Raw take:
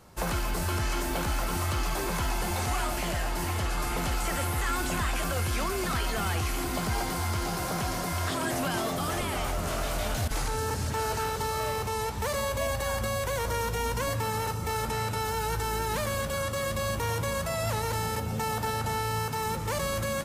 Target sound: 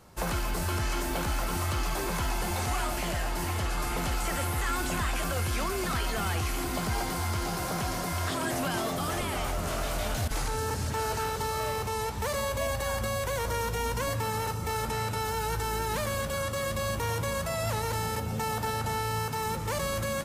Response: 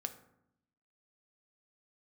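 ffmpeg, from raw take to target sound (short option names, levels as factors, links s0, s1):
-af "acontrast=46,volume=0.473"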